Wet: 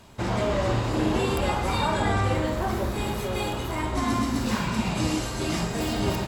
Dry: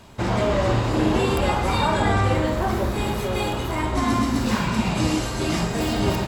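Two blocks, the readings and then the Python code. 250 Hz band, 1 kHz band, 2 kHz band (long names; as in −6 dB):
−4.0 dB, −4.0 dB, −3.5 dB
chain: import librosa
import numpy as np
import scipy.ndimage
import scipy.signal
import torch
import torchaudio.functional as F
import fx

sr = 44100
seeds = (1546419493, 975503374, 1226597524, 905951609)

y = fx.peak_eq(x, sr, hz=13000.0, db=2.5, octaves=2.0)
y = y * librosa.db_to_amplitude(-4.0)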